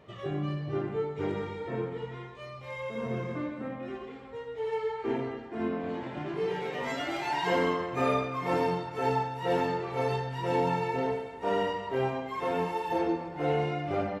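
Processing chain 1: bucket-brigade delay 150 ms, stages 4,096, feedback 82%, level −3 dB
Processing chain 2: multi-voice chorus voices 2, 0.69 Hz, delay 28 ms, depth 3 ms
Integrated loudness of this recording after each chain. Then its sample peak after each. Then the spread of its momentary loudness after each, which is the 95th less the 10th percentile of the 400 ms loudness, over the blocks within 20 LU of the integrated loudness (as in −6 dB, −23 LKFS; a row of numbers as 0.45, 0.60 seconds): −28.0, −34.5 LKFS; −11.5, −18.0 dBFS; 9, 10 LU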